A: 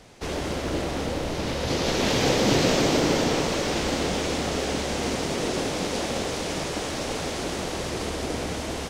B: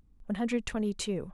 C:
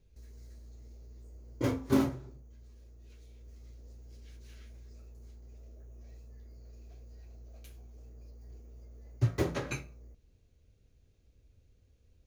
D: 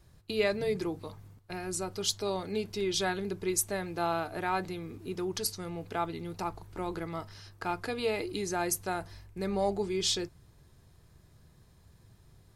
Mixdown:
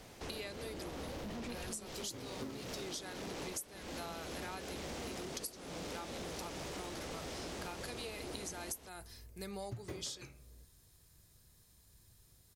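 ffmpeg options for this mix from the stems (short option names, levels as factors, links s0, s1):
-filter_complex "[0:a]asoftclip=type=hard:threshold=0.0631,volume=0.596[s0];[1:a]adelay=950,volume=1.06[s1];[2:a]adelay=500,volume=0.501[s2];[3:a]crystalizer=i=5.5:c=0,volume=0.282[s3];[s0][s1]amix=inputs=2:normalize=0,asoftclip=type=tanh:threshold=0.0316,alimiter=level_in=4.47:limit=0.0631:level=0:latency=1,volume=0.224,volume=1[s4];[s2][s3][s4]amix=inputs=3:normalize=0,acompressor=threshold=0.01:ratio=16"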